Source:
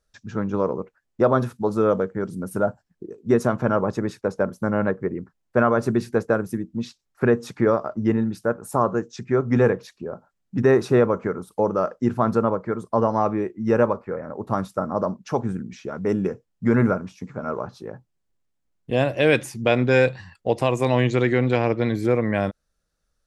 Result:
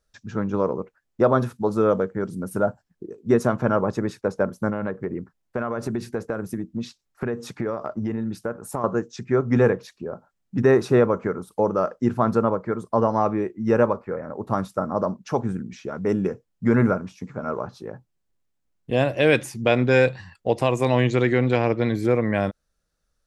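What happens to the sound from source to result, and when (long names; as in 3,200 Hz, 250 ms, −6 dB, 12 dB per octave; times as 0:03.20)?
0:04.69–0:08.84: downward compressor, threshold −22 dBFS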